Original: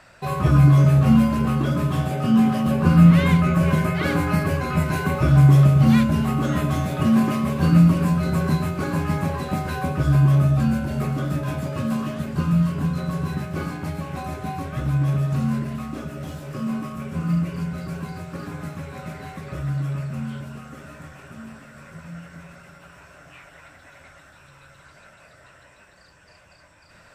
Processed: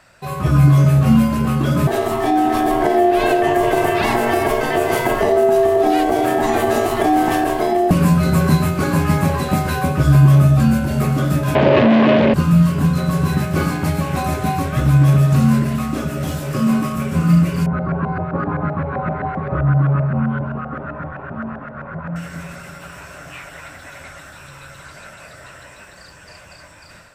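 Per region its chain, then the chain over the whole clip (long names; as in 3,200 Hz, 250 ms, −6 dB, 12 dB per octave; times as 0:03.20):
0:01.87–0:07.91: downward compressor 4 to 1, threshold −18 dBFS + ring modulation 530 Hz
0:11.55–0:12.34: mains-hum notches 50/100/150/200/250 Hz + leveller curve on the samples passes 5 + loudspeaker in its box 140–3,300 Hz, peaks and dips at 160 Hz −9 dB, 380 Hz +4 dB, 560 Hz +5 dB, 1,300 Hz −8 dB
0:17.66–0:22.16: low-pass filter 4,600 Hz 24 dB per octave + auto-filter low-pass saw up 7.7 Hz 670–1,600 Hz
whole clip: high-shelf EQ 6,700 Hz +6 dB; automatic gain control; level −1 dB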